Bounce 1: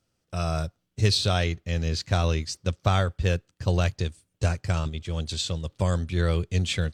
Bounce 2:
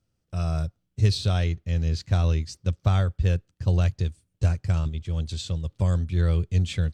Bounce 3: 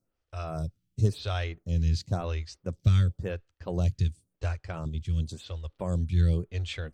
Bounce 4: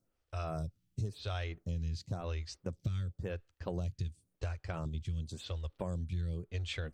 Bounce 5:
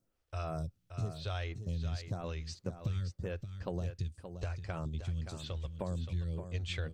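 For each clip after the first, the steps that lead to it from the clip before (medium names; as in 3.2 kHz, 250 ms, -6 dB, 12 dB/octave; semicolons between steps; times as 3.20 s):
bass shelf 210 Hz +11.5 dB; trim -6.5 dB
lamp-driven phase shifter 0.94 Hz
compression 6:1, threshold -34 dBFS, peak gain reduction 16 dB
delay 574 ms -9 dB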